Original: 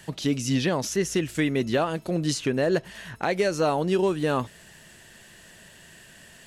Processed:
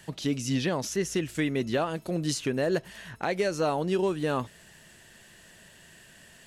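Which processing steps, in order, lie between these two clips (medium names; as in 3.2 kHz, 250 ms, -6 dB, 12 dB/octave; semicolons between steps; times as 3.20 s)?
1.96–2.96 s: treble shelf 10 kHz +6.5 dB; trim -3.5 dB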